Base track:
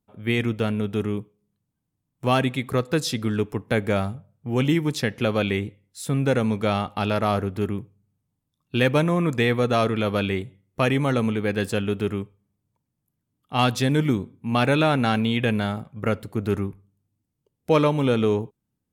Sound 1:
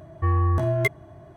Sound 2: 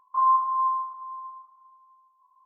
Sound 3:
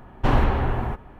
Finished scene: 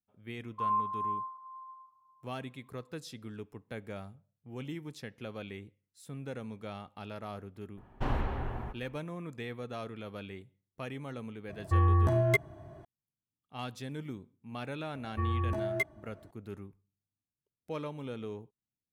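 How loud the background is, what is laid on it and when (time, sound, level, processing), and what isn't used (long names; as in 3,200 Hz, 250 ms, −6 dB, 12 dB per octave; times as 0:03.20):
base track −19.5 dB
0:00.44: mix in 2 −10 dB
0:07.77: mix in 3 −12.5 dB
0:11.49: mix in 1 −3.5 dB
0:14.95: mix in 1 −11 dB + comb filter 3.4 ms, depth 68%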